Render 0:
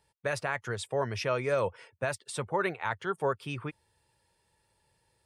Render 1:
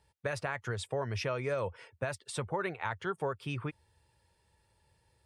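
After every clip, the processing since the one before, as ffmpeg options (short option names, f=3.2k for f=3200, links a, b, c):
-af "equalizer=f=72:t=o:w=1.2:g=8.5,acompressor=threshold=-31dB:ratio=3,highshelf=f=8.4k:g=-5"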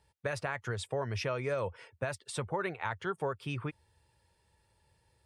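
-af anull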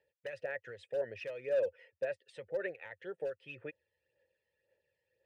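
-filter_complex "[0:a]asplit=3[a][b][c];[a]bandpass=f=530:t=q:w=8,volume=0dB[d];[b]bandpass=f=1.84k:t=q:w=8,volume=-6dB[e];[c]bandpass=f=2.48k:t=q:w=8,volume=-9dB[f];[d][e][f]amix=inputs=3:normalize=0,asoftclip=type=hard:threshold=-34.5dB,aphaser=in_gain=1:out_gain=1:delay=1:decay=0.52:speed=1.9:type=sinusoidal,volume=2.5dB"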